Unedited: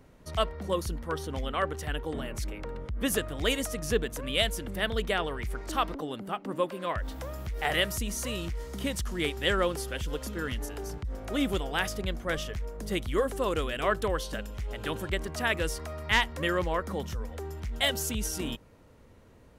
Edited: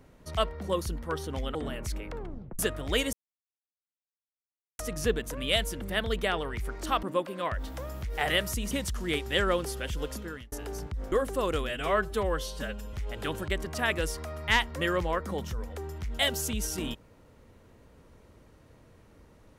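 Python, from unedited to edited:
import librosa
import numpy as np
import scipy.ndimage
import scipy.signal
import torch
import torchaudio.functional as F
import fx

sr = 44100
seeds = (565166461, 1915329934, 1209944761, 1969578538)

y = fx.edit(x, sr, fx.cut(start_s=1.55, length_s=0.52),
    fx.tape_stop(start_s=2.68, length_s=0.43),
    fx.insert_silence(at_s=3.65, length_s=1.66),
    fx.cut(start_s=5.89, length_s=0.58),
    fx.cut(start_s=8.15, length_s=0.67),
    fx.fade_out_span(start_s=10.22, length_s=0.41),
    fx.cut(start_s=11.23, length_s=1.92),
    fx.stretch_span(start_s=13.72, length_s=0.83, factor=1.5), tone=tone)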